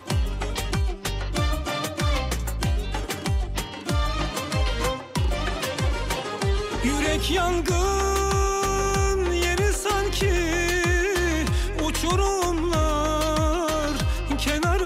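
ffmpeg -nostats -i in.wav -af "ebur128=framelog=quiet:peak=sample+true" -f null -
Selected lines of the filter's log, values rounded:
Integrated loudness:
  I:         -24.5 LUFS
  Threshold: -34.5 LUFS
Loudness range:
  LRA:         4.1 LU
  Threshold: -44.3 LUFS
  LRA low:   -26.9 LUFS
  LRA high:  -22.8 LUFS
Sample peak:
  Peak:      -11.6 dBFS
True peak:
  Peak:      -11.6 dBFS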